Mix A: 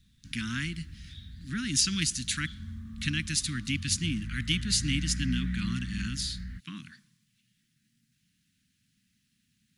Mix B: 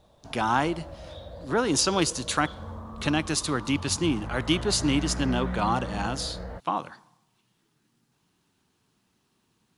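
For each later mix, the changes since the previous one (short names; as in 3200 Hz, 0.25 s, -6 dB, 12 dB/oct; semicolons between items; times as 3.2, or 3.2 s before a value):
master: remove elliptic band-stop 230–1800 Hz, stop band 70 dB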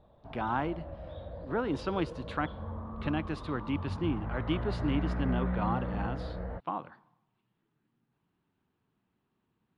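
speech -5.5 dB; master: add air absorption 450 m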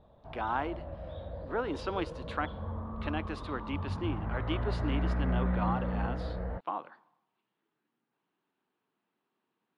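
speech: add HPF 340 Hz 12 dB/oct; reverb: on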